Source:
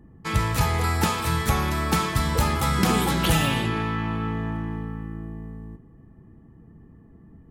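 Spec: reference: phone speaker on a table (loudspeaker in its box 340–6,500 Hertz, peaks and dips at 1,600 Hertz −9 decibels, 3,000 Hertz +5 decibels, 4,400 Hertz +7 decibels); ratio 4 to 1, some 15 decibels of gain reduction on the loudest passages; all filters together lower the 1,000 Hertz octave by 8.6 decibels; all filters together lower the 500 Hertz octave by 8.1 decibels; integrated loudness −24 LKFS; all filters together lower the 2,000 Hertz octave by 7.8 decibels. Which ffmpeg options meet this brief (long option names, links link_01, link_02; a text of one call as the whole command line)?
ffmpeg -i in.wav -af "equalizer=frequency=500:width_type=o:gain=-8,equalizer=frequency=1000:width_type=o:gain=-5.5,equalizer=frequency=2000:width_type=o:gain=-6,acompressor=threshold=-37dB:ratio=4,highpass=frequency=340:width=0.5412,highpass=frequency=340:width=1.3066,equalizer=frequency=1600:width_type=q:width=4:gain=-9,equalizer=frequency=3000:width_type=q:width=4:gain=5,equalizer=frequency=4400:width_type=q:width=4:gain=7,lowpass=frequency=6500:width=0.5412,lowpass=frequency=6500:width=1.3066,volume=19dB" out.wav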